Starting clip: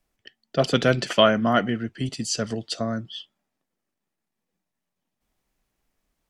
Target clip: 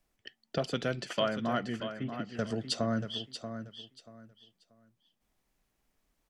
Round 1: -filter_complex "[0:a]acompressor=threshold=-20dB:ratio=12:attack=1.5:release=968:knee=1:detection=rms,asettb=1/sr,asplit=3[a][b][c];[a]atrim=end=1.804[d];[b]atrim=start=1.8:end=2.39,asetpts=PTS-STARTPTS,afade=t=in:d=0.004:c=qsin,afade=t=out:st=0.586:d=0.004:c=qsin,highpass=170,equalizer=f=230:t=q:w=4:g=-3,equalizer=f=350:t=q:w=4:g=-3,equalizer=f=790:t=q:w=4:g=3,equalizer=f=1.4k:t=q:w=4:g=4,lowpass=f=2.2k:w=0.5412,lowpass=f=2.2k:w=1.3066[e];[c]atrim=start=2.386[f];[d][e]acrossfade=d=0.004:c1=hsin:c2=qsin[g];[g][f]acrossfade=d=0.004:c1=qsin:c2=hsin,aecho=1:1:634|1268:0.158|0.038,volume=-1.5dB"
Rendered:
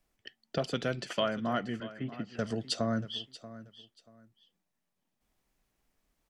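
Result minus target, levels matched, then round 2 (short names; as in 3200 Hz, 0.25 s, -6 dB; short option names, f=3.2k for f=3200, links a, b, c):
echo-to-direct -6.5 dB
-filter_complex "[0:a]acompressor=threshold=-20dB:ratio=12:attack=1.5:release=968:knee=1:detection=rms,asettb=1/sr,asplit=3[a][b][c];[a]atrim=end=1.804[d];[b]atrim=start=1.8:end=2.39,asetpts=PTS-STARTPTS,afade=t=in:d=0.004:c=qsin,afade=t=out:st=0.586:d=0.004:c=qsin,highpass=170,equalizer=f=230:t=q:w=4:g=-3,equalizer=f=350:t=q:w=4:g=-3,equalizer=f=790:t=q:w=4:g=3,equalizer=f=1.4k:t=q:w=4:g=4,lowpass=f=2.2k:w=0.5412,lowpass=f=2.2k:w=1.3066[e];[c]atrim=start=2.386[f];[d][e]acrossfade=d=0.004:c1=hsin:c2=qsin[g];[g][f]acrossfade=d=0.004:c1=qsin:c2=hsin,aecho=1:1:634|1268|1902:0.335|0.0804|0.0193,volume=-1.5dB"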